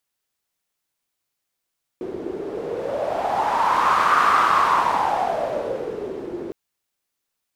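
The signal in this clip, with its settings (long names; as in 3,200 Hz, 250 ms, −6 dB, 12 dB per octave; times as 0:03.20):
wind from filtered noise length 4.51 s, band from 360 Hz, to 1,200 Hz, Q 6.2, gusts 1, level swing 13.5 dB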